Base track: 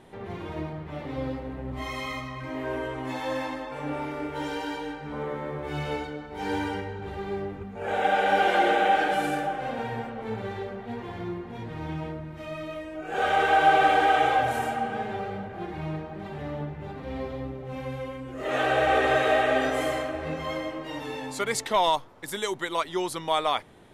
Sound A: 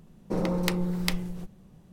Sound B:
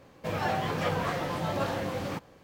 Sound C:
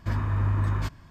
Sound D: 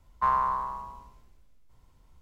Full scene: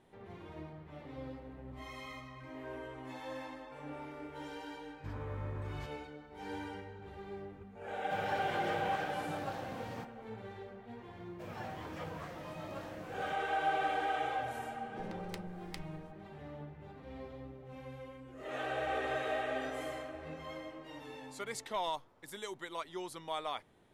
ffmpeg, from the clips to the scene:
-filter_complex "[2:a]asplit=2[s0][s1];[0:a]volume=0.211[s2];[3:a]aeval=exprs='val(0)+0.00251*sin(2*PI*2500*n/s)':c=same[s3];[s1]equalizer=f=4100:t=o:w=0.77:g=-2.5[s4];[1:a]equalizer=f=13000:t=o:w=0.34:g=-8[s5];[s3]atrim=end=1.1,asetpts=PTS-STARTPTS,volume=0.141,afade=t=in:d=0.004:c=hsin,afade=t=out:st=1.096:d=0.004:c=hsin,adelay=4980[s6];[s0]atrim=end=2.43,asetpts=PTS-STARTPTS,volume=0.237,afade=t=in:d=0.004:c=hsin,afade=t=out:st=2.426:d=0.004:c=hsin,adelay=346626S[s7];[s4]atrim=end=2.43,asetpts=PTS-STARTPTS,volume=0.178,afade=t=in:d=0.004:c=hsin,afade=t=out:st=2.426:d=0.004:c=hsin,adelay=11150[s8];[s5]atrim=end=1.92,asetpts=PTS-STARTPTS,volume=0.126,afade=t=in:d=0.004:c=hsin,afade=t=out:st=1.916:d=0.004:c=hsin,adelay=14660[s9];[s2][s6][s7][s8][s9]amix=inputs=5:normalize=0"

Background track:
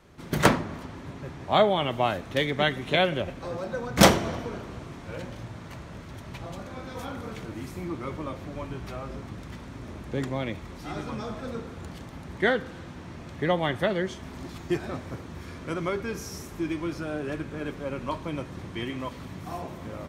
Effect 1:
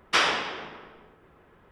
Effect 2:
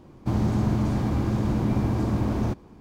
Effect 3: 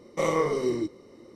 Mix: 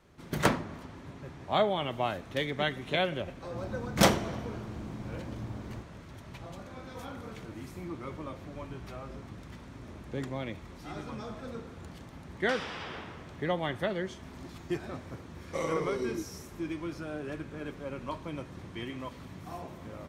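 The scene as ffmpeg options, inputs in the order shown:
-filter_complex "[0:a]volume=0.501[s0];[1:a]acompressor=threshold=0.0224:ratio=6:attack=3.2:release=140:knee=1:detection=peak[s1];[2:a]atrim=end=2.8,asetpts=PTS-STARTPTS,volume=0.141,afade=t=in:d=0.004:c=hsin,afade=t=out:st=2.796:d=0.004:c=hsin,adelay=145089S[s2];[s1]atrim=end=1.71,asetpts=PTS-STARTPTS,volume=0.668,afade=t=in:d=0.004:c=hsin,afade=t=out:st=1.706:d=0.004:c=hsin,adelay=545076S[s3];[3:a]atrim=end=1.35,asetpts=PTS-STARTPTS,volume=0.422,afade=t=in:d=0.004:c=hsin,afade=t=out:st=1.346:d=0.004:c=hsin,adelay=15360[s4];[s0][s2][s3][s4]amix=inputs=4:normalize=0"

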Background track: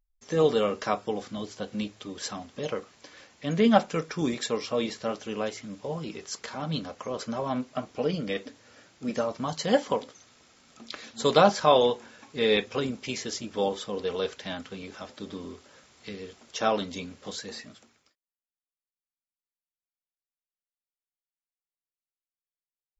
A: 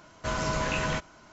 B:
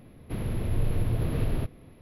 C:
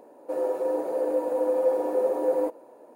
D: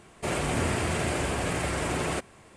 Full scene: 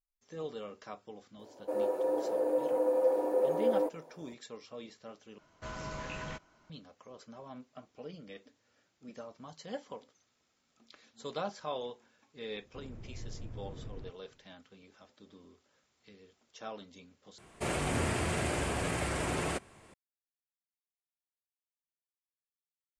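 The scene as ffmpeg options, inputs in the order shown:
-filter_complex "[0:a]volume=0.126[s0];[1:a]highshelf=f=6500:g=-4.5[s1];[2:a]lowpass=2100[s2];[s0]asplit=3[s3][s4][s5];[s3]atrim=end=5.384[s6];[s1]atrim=end=1.32,asetpts=PTS-STARTPTS,volume=0.251[s7];[s4]atrim=start=6.696:end=17.384[s8];[4:a]atrim=end=2.56,asetpts=PTS-STARTPTS,volume=0.596[s9];[s5]atrim=start=19.936[s10];[3:a]atrim=end=2.95,asetpts=PTS-STARTPTS,volume=0.596,afade=t=in:d=0.004:c=hsin,afade=t=out:st=2.946:d=0.004:c=hsin,adelay=1390[s11];[s2]atrim=end=2.01,asetpts=PTS-STARTPTS,volume=0.126,afade=t=in:d=0.004:c=hsin,afade=t=out:st=2.006:d=0.004:c=hsin,adelay=12440[s12];[s6][s7]acrossfade=d=0.004:c1=hsin:c2=hsin[s13];[s13][s8]acrossfade=d=0.004:c1=hsin:c2=hsin[s14];[s14][s9]acrossfade=d=0.004:c1=hsin:c2=hsin[s15];[s15][s10]acrossfade=d=0.004:c1=hsin:c2=hsin[s16];[s16][s11][s12]amix=inputs=3:normalize=0"

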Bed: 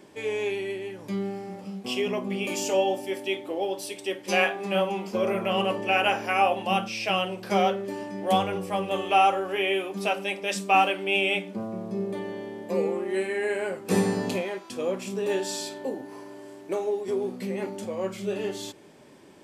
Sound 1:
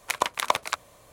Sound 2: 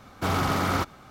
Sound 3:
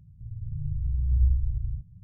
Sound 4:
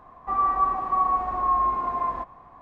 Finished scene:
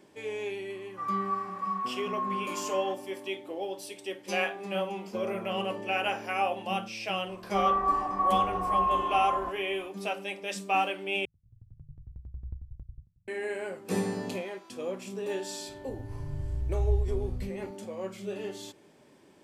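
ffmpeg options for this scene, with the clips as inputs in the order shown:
-filter_complex "[4:a]asplit=2[s0][s1];[3:a]asplit=2[s2][s3];[0:a]volume=0.473[s4];[s0]highpass=f=1300:w=0.5412,highpass=f=1300:w=1.3066[s5];[s2]aeval=exprs='val(0)*pow(10,-20*if(lt(mod(11*n/s,1),2*abs(11)/1000),1-mod(11*n/s,1)/(2*abs(11)/1000),(mod(11*n/s,1)-2*abs(11)/1000)/(1-2*abs(11)/1000))/20)':c=same[s6];[s4]asplit=2[s7][s8];[s7]atrim=end=11.254[s9];[s6]atrim=end=2.03,asetpts=PTS-STARTPTS,volume=0.282[s10];[s8]atrim=start=13.276[s11];[s5]atrim=end=2.61,asetpts=PTS-STARTPTS,volume=0.668,afade=t=in:d=0.004:c=hsin,afade=t=out:st=2.606:d=0.004:c=hsin,adelay=700[s12];[s1]atrim=end=2.61,asetpts=PTS-STARTPTS,volume=0.631,afade=t=in:d=0.004:c=hsin,afade=t=out:st=2.606:d=0.004:c=hsin,adelay=7270[s13];[s3]atrim=end=2.03,asetpts=PTS-STARTPTS,volume=0.596,afade=t=in:d=0.004:c=hsin,afade=t=out:st=2.026:d=0.004:c=hsin,adelay=15680[s14];[s9][s10]acrossfade=d=0.004:c1=hsin:c2=hsin[s15];[s15][s11]acrossfade=d=0.004:c1=hsin:c2=hsin[s16];[s16][s12][s13][s14]amix=inputs=4:normalize=0"

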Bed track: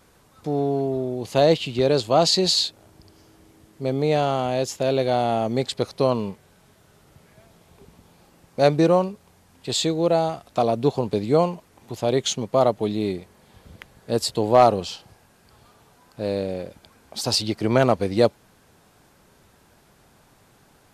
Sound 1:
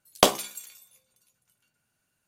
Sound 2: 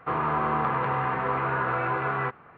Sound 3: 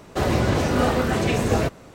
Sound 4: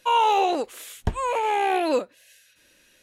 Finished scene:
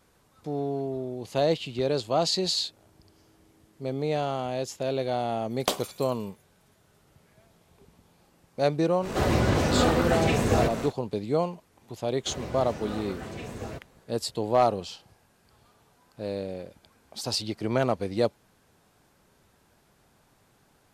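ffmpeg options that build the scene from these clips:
-filter_complex "[3:a]asplit=2[s0][s1];[0:a]volume=0.447[s2];[s0]acompressor=mode=upward:threshold=0.0891:ratio=4:attack=0.41:release=32:knee=2.83:detection=peak[s3];[1:a]atrim=end=2.27,asetpts=PTS-STARTPTS,volume=0.376,afade=t=in:d=0.004:c=hsin,afade=t=out:st=2.266:d=0.004:c=hsin,adelay=240345S[s4];[s3]atrim=end=1.94,asetpts=PTS-STARTPTS,volume=0.75,afade=t=in:d=0.1,afade=t=out:st=1.84:d=0.1,adelay=9000[s5];[s1]atrim=end=1.94,asetpts=PTS-STARTPTS,volume=0.15,afade=t=in:d=0.004:c=hsin,afade=t=out:st=1.936:d=0.004:c=hsin,adelay=12100[s6];[s2][s4][s5][s6]amix=inputs=4:normalize=0"

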